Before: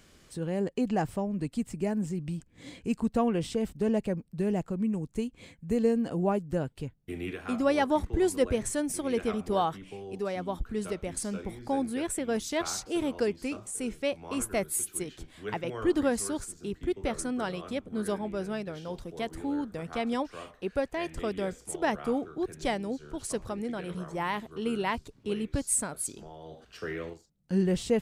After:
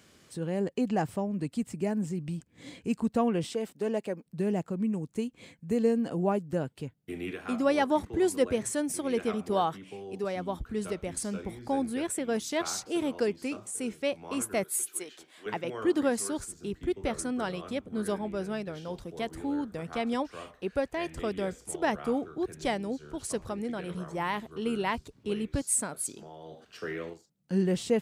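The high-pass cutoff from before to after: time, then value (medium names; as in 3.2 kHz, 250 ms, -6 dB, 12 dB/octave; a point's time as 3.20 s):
94 Hz
from 3.45 s 310 Hz
from 4.26 s 120 Hz
from 10.24 s 51 Hz
from 12.07 s 120 Hz
from 14.64 s 460 Hz
from 15.46 s 160 Hz
from 16.38 s 42 Hz
from 25.61 s 130 Hz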